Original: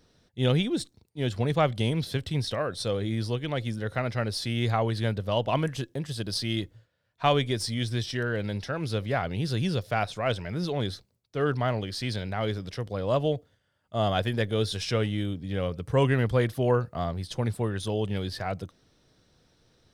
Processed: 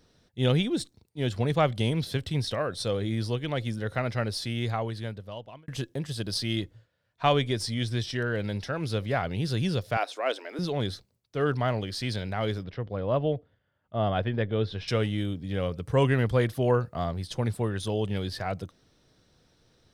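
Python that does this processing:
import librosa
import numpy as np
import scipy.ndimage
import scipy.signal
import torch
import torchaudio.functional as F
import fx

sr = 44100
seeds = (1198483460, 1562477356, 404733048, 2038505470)

y = fx.high_shelf(x, sr, hz=9000.0, db=-4.5, at=(6.57, 8.32))
y = fx.ellip_highpass(y, sr, hz=280.0, order=4, stop_db=40, at=(9.97, 10.59))
y = fx.air_absorb(y, sr, metres=320.0, at=(12.63, 14.88))
y = fx.edit(y, sr, fx.fade_out_span(start_s=4.2, length_s=1.48), tone=tone)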